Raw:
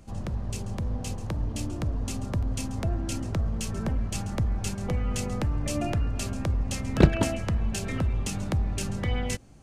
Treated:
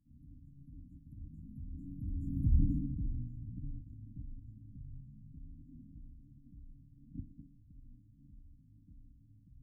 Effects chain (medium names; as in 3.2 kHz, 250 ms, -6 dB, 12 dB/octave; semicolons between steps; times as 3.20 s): Doppler pass-by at 2.57 s, 48 m/s, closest 6.2 m; brick-wall FIR band-stop 470–11000 Hz; feedback echo behind a band-pass 121 ms, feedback 57%, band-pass 1.2 kHz, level -4.5 dB; formant-preserving pitch shift -8.5 st; trim +4.5 dB